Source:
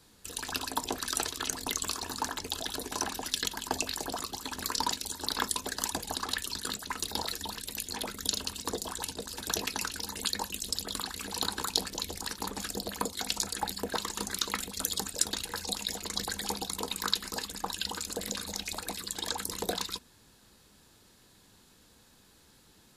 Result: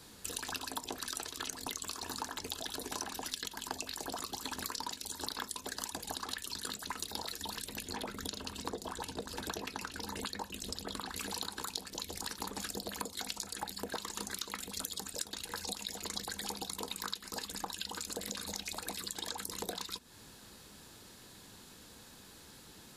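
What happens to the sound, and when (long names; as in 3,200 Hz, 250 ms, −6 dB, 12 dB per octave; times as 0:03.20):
0:07.67–0:11.16: high-shelf EQ 3,200 Hz −11 dB
whole clip: low-shelf EQ 61 Hz −6 dB; downward compressor 6 to 1, threshold −43 dBFS; level +6 dB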